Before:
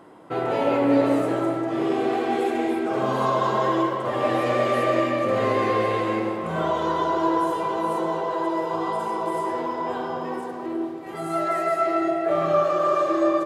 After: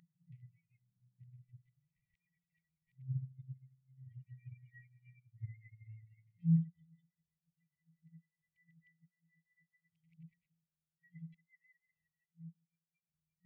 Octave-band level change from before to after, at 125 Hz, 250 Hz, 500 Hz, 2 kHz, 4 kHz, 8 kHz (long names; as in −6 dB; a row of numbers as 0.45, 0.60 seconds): −6.5 dB, −20.5 dB, below −40 dB, below −35 dB, below −40 dB, below −35 dB